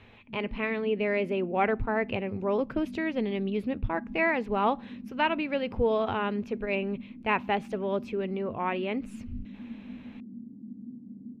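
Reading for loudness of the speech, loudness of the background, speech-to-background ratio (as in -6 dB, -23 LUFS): -29.5 LUFS, -44.0 LUFS, 14.5 dB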